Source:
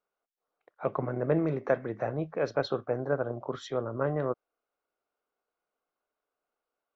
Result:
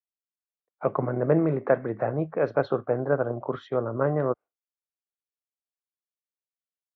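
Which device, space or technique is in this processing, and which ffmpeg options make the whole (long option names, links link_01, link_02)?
hearing-loss simulation: -filter_complex "[0:a]lowpass=1900,agate=range=-33dB:threshold=-42dB:ratio=3:detection=peak,asettb=1/sr,asplit=3[link_01][link_02][link_03];[link_01]atrim=end=2.934[link_04];[link_02]atrim=start=2.93:end=3.76,asetpts=PTS-STARTPTS,afade=type=in:duration=0.004:curve=qsin,afade=type=out:start_time=0.826:duration=0.004:curve=qsin,equalizer=frequency=3000:width=1.6:gain=4[link_05];[link_03]atrim=start=3.756[link_06];[link_04][link_05]acrossfade=duration=0.004:curve1=hsin:curve2=qsin[link_07];[link_07][link_06]acrossfade=duration=0.004:curve1=qsin:curve2=hsin,highpass=59,volume=5dB"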